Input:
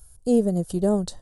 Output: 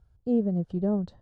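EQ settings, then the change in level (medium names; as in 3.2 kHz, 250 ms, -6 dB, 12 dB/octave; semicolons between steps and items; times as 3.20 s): high-pass 130 Hz 6 dB/octave; distance through air 180 m; tone controls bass +9 dB, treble -11 dB; -7.5 dB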